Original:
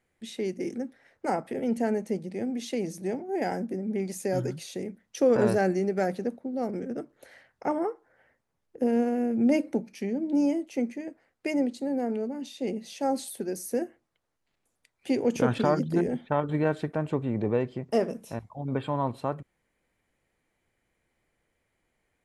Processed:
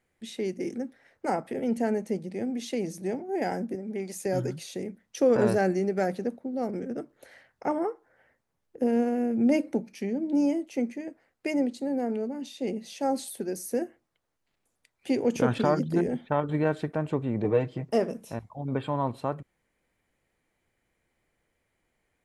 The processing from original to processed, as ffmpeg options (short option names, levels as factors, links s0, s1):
-filter_complex "[0:a]asettb=1/sr,asplit=3[s0][s1][s2];[s0]atrim=end=3.754[s3];[s1]atrim=start=3.75:end=4.26,asetpts=PTS-STARTPTS,afade=t=in:d=0.004:c=qsin,afade=t=out:st=0.506:d=0.004:c=qsin,highpass=f=320:p=1[s4];[s2]atrim=start=4.256[s5];[s3][s4]acrossfade=d=0.004:c1=hsin:c2=qsin[s6];[s6][s5]acrossfade=d=0.004:c1=qsin:c2=hsin,asettb=1/sr,asplit=3[s7][s8][s9];[s7]atrim=end=17.444[s10];[s8]atrim=start=17.44:end=17.89,asetpts=PTS-STARTPTS,afade=t=in:d=0.004:c=qsin,afade=t=out:st=0.446:d=0.004:c=qsin,aecho=1:1:6.5:0.65,atrim=end_sample=19845[s11];[s9]atrim=start=17.886[s12];[s10][s11]acrossfade=d=0.004:c1=hsin:c2=qsin[s13];[s13][s12]acrossfade=d=0.004:c1=qsin:c2=hsin"